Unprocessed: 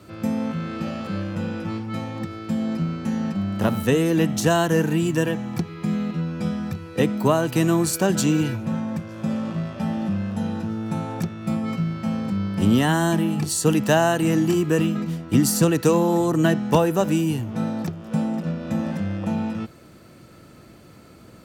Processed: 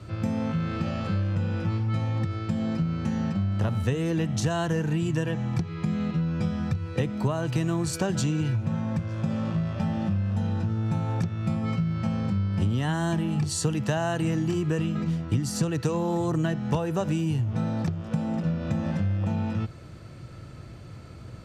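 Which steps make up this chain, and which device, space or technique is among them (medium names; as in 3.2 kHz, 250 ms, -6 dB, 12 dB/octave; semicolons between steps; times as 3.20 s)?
jukebox (low-pass 7.3 kHz 12 dB/octave; resonant low shelf 160 Hz +8.5 dB, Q 1.5; compression 5:1, threshold -23 dBFS, peak gain reduction 13.5 dB)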